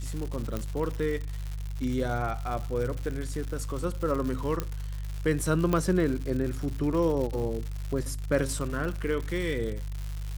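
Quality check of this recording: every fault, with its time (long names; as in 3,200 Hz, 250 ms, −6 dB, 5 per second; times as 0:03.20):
surface crackle 200 per second −33 dBFS
mains hum 50 Hz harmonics 3 −34 dBFS
0:00.57: click −18 dBFS
0:04.60: click −15 dBFS
0:05.73: click −14 dBFS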